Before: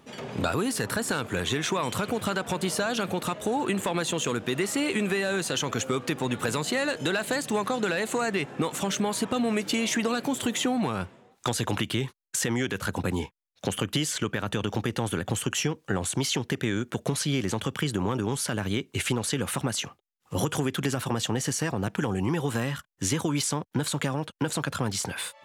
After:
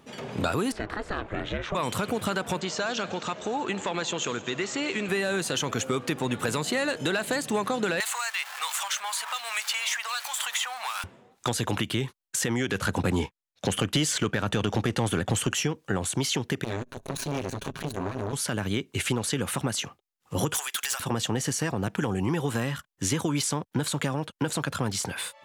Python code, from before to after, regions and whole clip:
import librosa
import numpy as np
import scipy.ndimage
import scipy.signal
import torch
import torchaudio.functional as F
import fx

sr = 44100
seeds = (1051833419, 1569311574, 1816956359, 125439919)

y = fx.chain(x, sr, fx.lowpass(hz=2700.0, slope=12),
    fx.ring_mod(carrier_hz=210.0), at=(0.72, 1.75))
y = fx.chain(y, sr, fx.steep_lowpass(hz=7500.0, slope=72),
    fx.low_shelf(hz=380.0, db=-7.0),
    fx.echo_heads(ms=83, heads='second and third', feedback_pct=41, wet_db=-18.5), at=(2.6, 5.09))
y = fx.chain(y, sr, fx.zero_step(step_db=-36.0),
    fx.cheby2_highpass(hz=350.0, order=4, stop_db=50),
    fx.band_squash(depth_pct=100), at=(8.0, 11.04))
y = fx.chain(y, sr, fx.lowpass(hz=11000.0, slope=12),
    fx.leveller(passes=1), at=(12.69, 15.55))
y = fx.chain(y, sr, fx.lower_of_two(delay_ms=7.3),
    fx.ripple_eq(per_octave=1.5, db=7),
    fx.transformer_sat(knee_hz=810.0), at=(16.64, 18.33))
y = fx.chain(y, sr, fx.highpass(hz=730.0, slope=24),
    fx.tilt_eq(slope=4.0),
    fx.clip_hard(threshold_db=-23.5), at=(20.54, 21.0))